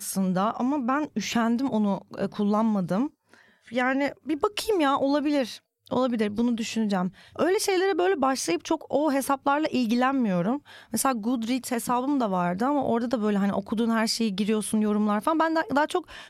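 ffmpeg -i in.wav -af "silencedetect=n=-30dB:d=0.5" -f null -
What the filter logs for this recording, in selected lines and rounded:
silence_start: 3.07
silence_end: 3.73 | silence_duration: 0.66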